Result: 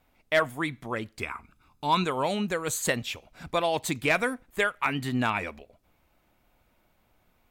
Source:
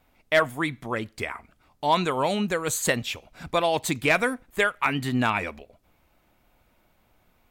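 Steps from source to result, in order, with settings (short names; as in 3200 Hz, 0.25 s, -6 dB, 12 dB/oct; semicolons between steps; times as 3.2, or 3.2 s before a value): 1.22–2.04 comb 0.8 ms, depth 57%; gain -3 dB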